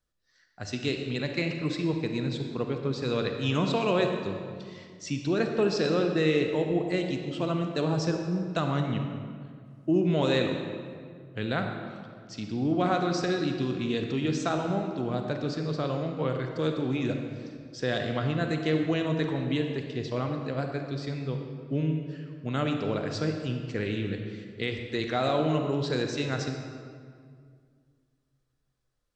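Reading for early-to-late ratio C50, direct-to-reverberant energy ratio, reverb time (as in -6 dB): 4.5 dB, 4.0 dB, 2.1 s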